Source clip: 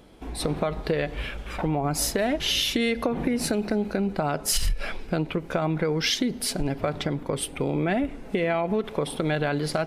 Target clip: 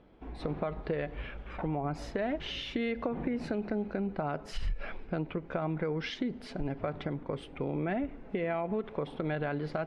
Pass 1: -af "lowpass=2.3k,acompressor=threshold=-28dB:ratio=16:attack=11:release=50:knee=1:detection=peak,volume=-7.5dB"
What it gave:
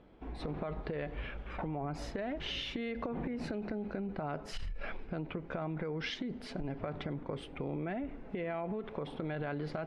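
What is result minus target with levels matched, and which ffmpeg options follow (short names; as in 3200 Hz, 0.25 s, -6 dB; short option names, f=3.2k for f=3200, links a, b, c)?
compressor: peak gain reduction +10 dB
-af "lowpass=2.3k,volume=-7.5dB"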